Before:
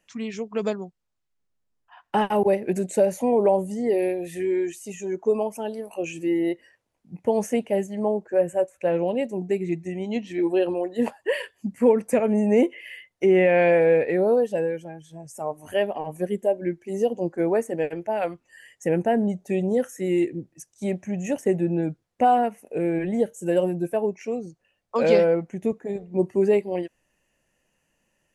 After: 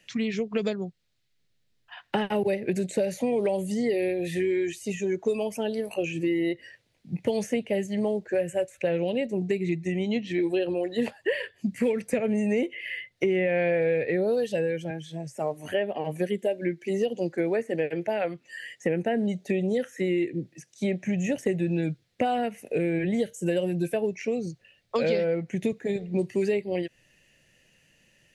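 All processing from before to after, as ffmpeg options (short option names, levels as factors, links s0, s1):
-filter_complex "[0:a]asettb=1/sr,asplit=3[s0][s1][s2];[s0]atrim=end=14.904[s3];[s1]atrim=start=14.9:end=21.06,asetpts=PTS-STARTPTS,afade=t=in:d=0.004:c=qsin,afade=t=out:st=6.156:d=0.004:c=qsin,highpass=170,acrossover=split=3000[s4][s5];[s5]acompressor=threshold=0.00158:ratio=4:attack=1:release=60[s6];[s4][s6]amix=inputs=2:normalize=0[s7];[s2]atrim=start=21.056[s8];[s3][s7]acrossfade=d=0.004:c1=hsin:c2=qsin[s9];[s9][s8]acrossfade=d=0.004:c1=qsin:c2=hsin,equalizer=f=125:t=o:w=1:g=9,equalizer=f=500:t=o:w=1:g=3,equalizer=f=1000:t=o:w=1:g=-8,equalizer=f=2000:t=o:w=1:g=7,equalizer=f=4000:t=o:w=1:g=11,acrossover=split=95|1800[s10][s11][s12];[s10]acompressor=threshold=0.00112:ratio=4[s13];[s11]acompressor=threshold=0.0355:ratio=4[s14];[s12]acompressor=threshold=0.00501:ratio=4[s15];[s13][s14][s15]amix=inputs=3:normalize=0,volume=1.58"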